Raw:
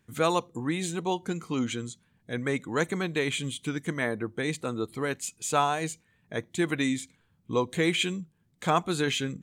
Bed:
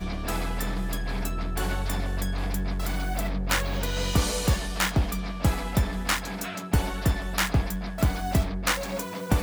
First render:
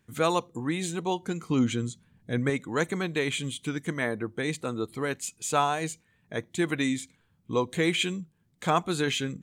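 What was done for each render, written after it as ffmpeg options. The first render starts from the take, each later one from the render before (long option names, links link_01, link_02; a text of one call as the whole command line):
ffmpeg -i in.wav -filter_complex "[0:a]asettb=1/sr,asplit=3[link_01][link_02][link_03];[link_01]atrim=end=1.504[link_04];[link_02]atrim=start=1.5:end=2.5,asetpts=PTS-STARTPTS,afade=type=in:duration=0.004:curve=qsin,afade=type=out:start_time=0.996:duration=0.004:curve=qsin,lowshelf=frequency=320:gain=8[link_05];[link_03]atrim=start=2.496[link_06];[link_04][link_05]acrossfade=duration=0.004:curve1=hsin:curve2=qsin[link_07];[link_07][link_06]acrossfade=duration=0.004:curve1=qsin:curve2=hsin" out.wav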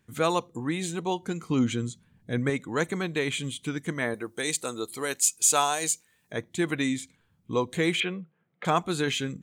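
ffmpeg -i in.wav -filter_complex "[0:a]asettb=1/sr,asplit=3[link_01][link_02][link_03];[link_01]atrim=end=4.144[link_04];[link_02]atrim=start=4.14:end=6.33,asetpts=PTS-STARTPTS,afade=type=in:duration=0.004:curve=qsin,afade=type=out:start_time=2.186:duration=0.004:curve=qsin,bass=frequency=250:gain=-10,treble=frequency=4000:gain=14[link_05];[link_03]atrim=start=6.326[link_06];[link_04][link_05]acrossfade=duration=0.004:curve1=hsin:curve2=qsin[link_07];[link_07][link_06]acrossfade=duration=0.004:curve1=qsin:curve2=hsin,asettb=1/sr,asplit=3[link_08][link_09][link_10];[link_08]atrim=end=8.004[link_11];[link_09]atrim=start=8:end=8.65,asetpts=PTS-STARTPTS,afade=type=in:duration=0.004:curve=qsin,afade=type=out:start_time=0.646:duration=0.004:curve=qsin,highpass=frequency=160:width=0.5412,highpass=frequency=160:width=1.3066,equalizer=frequency=260:width_type=q:width=4:gain=-9,equalizer=frequency=500:width_type=q:width=4:gain=8,equalizer=frequency=710:width_type=q:width=4:gain=7,equalizer=frequency=1300:width_type=q:width=4:gain=9,equalizer=frequency=2100:width_type=q:width=4:gain=5,lowpass=frequency=3100:width=0.5412,lowpass=frequency=3100:width=1.3066[link_12];[link_10]atrim=start=8.646[link_13];[link_11][link_12]acrossfade=duration=0.004:curve1=hsin:curve2=qsin[link_14];[link_14][link_13]acrossfade=duration=0.004:curve1=qsin:curve2=hsin" out.wav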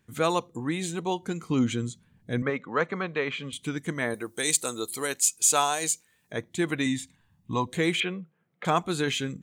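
ffmpeg -i in.wav -filter_complex "[0:a]asettb=1/sr,asplit=3[link_01][link_02][link_03];[link_01]atrim=end=2.424[link_04];[link_02]atrim=start=2.42:end=3.53,asetpts=PTS-STARTPTS,afade=type=in:duration=0.004:curve=qsin,afade=type=out:start_time=1.106:duration=0.004:curve=qsin,highpass=180,equalizer=frequency=320:width_type=q:width=4:gain=-7,equalizer=frequency=530:width_type=q:width=4:gain=4,equalizer=frequency=1200:width_type=q:width=4:gain=8,equalizer=frequency=3600:width_type=q:width=4:gain=-7,lowpass=frequency=4300:width=0.5412,lowpass=frequency=4300:width=1.3066[link_05];[link_03]atrim=start=3.526[link_06];[link_04][link_05]acrossfade=duration=0.004:curve1=hsin:curve2=qsin[link_07];[link_07][link_06]acrossfade=duration=0.004:curve1=qsin:curve2=hsin,asettb=1/sr,asplit=3[link_08][link_09][link_10];[link_08]atrim=end=4.104[link_11];[link_09]atrim=start=4.1:end=5.07,asetpts=PTS-STARTPTS,afade=type=in:duration=0.004:curve=qsin,afade=type=out:start_time=0.966:duration=0.004:curve=qsin,highshelf=frequency=5100:gain=8.5[link_12];[link_10]atrim=start=5.066[link_13];[link_11][link_12]acrossfade=duration=0.004:curve1=hsin:curve2=qsin[link_14];[link_14][link_13]acrossfade=duration=0.004:curve1=qsin:curve2=hsin,asettb=1/sr,asplit=3[link_15][link_16][link_17];[link_15]atrim=end=6.864[link_18];[link_16]atrim=start=6.86:end=7.67,asetpts=PTS-STARTPTS,afade=type=in:duration=0.004:curve=qsin,afade=type=out:start_time=0.806:duration=0.004:curve=qsin,aecho=1:1:1.1:0.59,atrim=end_sample=35721[link_19];[link_17]atrim=start=7.666[link_20];[link_18][link_19]acrossfade=duration=0.004:curve1=hsin:curve2=qsin[link_21];[link_21][link_20]acrossfade=duration=0.004:curve1=qsin:curve2=hsin" out.wav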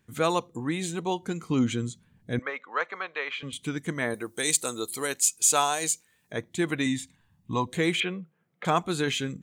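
ffmpeg -i in.wav -filter_complex "[0:a]asettb=1/sr,asplit=3[link_01][link_02][link_03];[link_01]atrim=end=2.394[link_04];[link_02]atrim=start=2.39:end=3.43,asetpts=PTS-STARTPTS,afade=type=in:duration=0.004:curve=qsin,afade=type=out:start_time=1.036:duration=0.004:curve=qsin,highpass=700,lowpass=6100[link_05];[link_03]atrim=start=3.426[link_06];[link_04][link_05]acrossfade=duration=0.004:curve1=hsin:curve2=qsin[link_07];[link_07][link_06]acrossfade=duration=0.004:curve1=qsin:curve2=hsin" out.wav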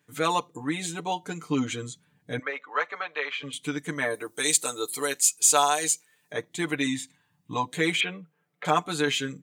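ffmpeg -i in.wav -af "highpass=frequency=330:poles=1,aecho=1:1:6.8:0.78" out.wav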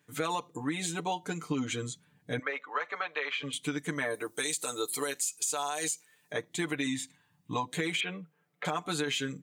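ffmpeg -i in.wav -af "alimiter=limit=-17dB:level=0:latency=1:release=78,acompressor=threshold=-28dB:ratio=6" out.wav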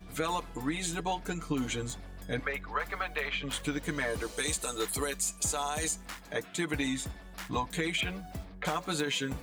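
ffmpeg -i in.wav -i bed.wav -filter_complex "[1:a]volume=-17.5dB[link_01];[0:a][link_01]amix=inputs=2:normalize=0" out.wav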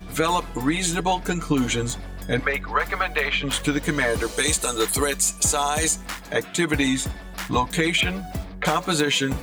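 ffmpeg -i in.wav -af "volume=10.5dB" out.wav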